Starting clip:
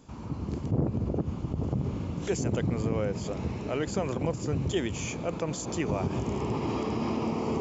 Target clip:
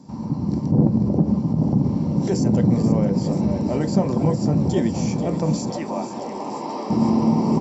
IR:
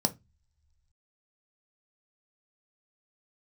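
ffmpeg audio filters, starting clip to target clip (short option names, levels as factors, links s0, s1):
-filter_complex "[0:a]asettb=1/sr,asplit=3[s0][s1][s2];[s0]atrim=end=5.704[s3];[s1]atrim=start=5.7:end=6.9,asetpts=PTS-STARTPTS,afade=t=in:d=0.004:c=qsin,afade=t=out:st=1.196:d=0.004:c=qsin,highpass=540,lowpass=6500[s4];[s2]atrim=start=6.896[s5];[s3][s4]acrossfade=d=0.004:c1=hsin:c2=qsin[s6];[s6][s5]acrossfade=d=0.004:c1=qsin:c2=hsin,asplit=9[s7][s8][s9][s10][s11][s12][s13][s14][s15];[s8]adelay=485,afreqshift=65,volume=0.299[s16];[s9]adelay=970,afreqshift=130,volume=0.184[s17];[s10]adelay=1455,afreqshift=195,volume=0.115[s18];[s11]adelay=1940,afreqshift=260,volume=0.0708[s19];[s12]adelay=2425,afreqshift=325,volume=0.0442[s20];[s13]adelay=2910,afreqshift=390,volume=0.0272[s21];[s14]adelay=3395,afreqshift=455,volume=0.017[s22];[s15]adelay=3880,afreqshift=520,volume=0.0105[s23];[s7][s16][s17][s18][s19][s20][s21][s22][s23]amix=inputs=9:normalize=0[s24];[1:a]atrim=start_sample=2205[s25];[s24][s25]afir=irnorm=-1:irlink=0,volume=0.631" -ar 48000 -c:a libopus -b:a 128k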